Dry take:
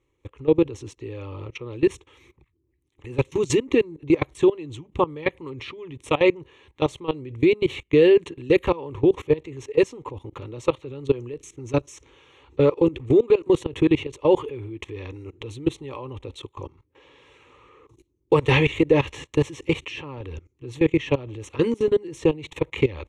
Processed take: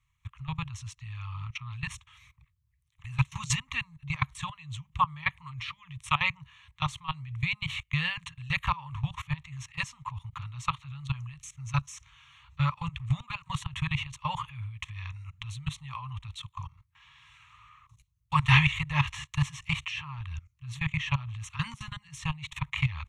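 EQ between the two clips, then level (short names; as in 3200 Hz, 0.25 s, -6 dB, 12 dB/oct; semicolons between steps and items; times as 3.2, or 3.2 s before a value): Chebyshev band-stop 140–1100 Hz, order 3; dynamic EQ 540 Hz, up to +8 dB, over -49 dBFS, Q 0.74; 0.0 dB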